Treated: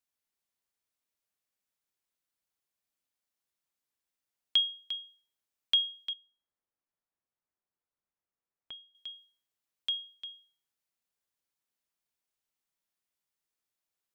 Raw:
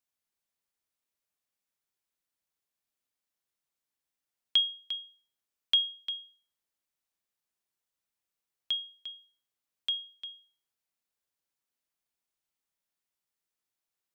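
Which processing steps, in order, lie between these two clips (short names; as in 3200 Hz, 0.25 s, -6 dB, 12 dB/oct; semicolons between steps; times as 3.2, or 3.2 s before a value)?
6.13–8.95 LPF 1500 Hz 12 dB/oct; gain -1 dB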